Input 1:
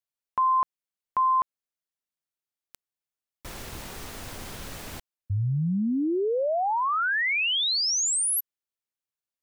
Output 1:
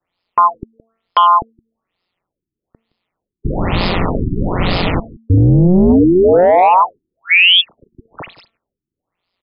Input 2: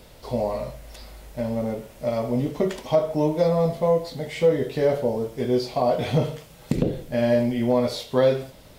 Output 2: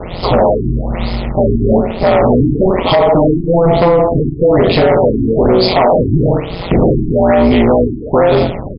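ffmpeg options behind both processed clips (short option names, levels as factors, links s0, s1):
-filter_complex "[0:a]adynamicequalizer=threshold=0.00501:dfrequency=3600:dqfactor=2.7:tfrequency=3600:tqfactor=2.7:attack=5:release=100:ratio=0.375:range=1.5:mode=cutabove:tftype=bell,acrossover=split=350|2900[s0][s1][s2];[s2]asoftclip=type=hard:threshold=0.0178[s3];[s0][s1][s3]amix=inputs=3:normalize=0,acompressor=threshold=0.0447:ratio=12:attack=39:release=57:knee=1:detection=peak,tremolo=f=180:d=0.974,bandreject=f=225.5:t=h:w=4,bandreject=f=451:t=h:w=4,bandreject=f=676.5:t=h:w=4,bandreject=f=902:t=h:w=4,bandreject=f=1127.5:t=h:w=4,bandreject=f=1353:t=h:w=4,bandreject=f=1578.5:t=h:w=4,bandreject=f=1804:t=h:w=4,asoftclip=type=tanh:threshold=0.0708,equalizer=f=1600:t=o:w=0.23:g=-10,apsyclip=50.1,asplit=2[s4][s5];[s5]aecho=0:1:168:0.1[s6];[s4][s6]amix=inputs=2:normalize=0,afftfilt=real='re*lt(b*sr/1024,380*pow(5300/380,0.5+0.5*sin(2*PI*1.1*pts/sr)))':imag='im*lt(b*sr/1024,380*pow(5300/380,0.5+0.5*sin(2*PI*1.1*pts/sr)))':win_size=1024:overlap=0.75,volume=0.596"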